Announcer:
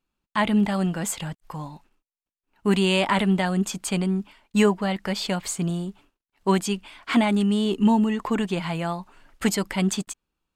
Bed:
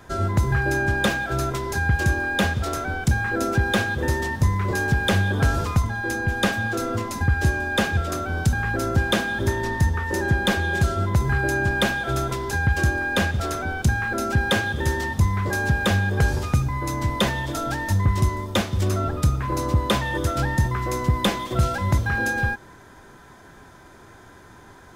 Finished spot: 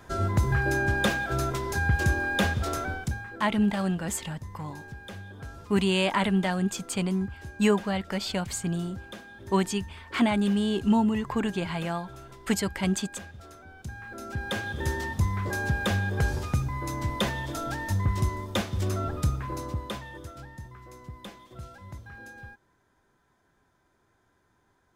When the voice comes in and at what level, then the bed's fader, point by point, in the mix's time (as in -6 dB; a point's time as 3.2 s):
3.05 s, -3.5 dB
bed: 2.85 s -3.5 dB
3.47 s -21.5 dB
13.69 s -21.5 dB
14.85 s -6 dB
19.3 s -6 dB
20.51 s -22 dB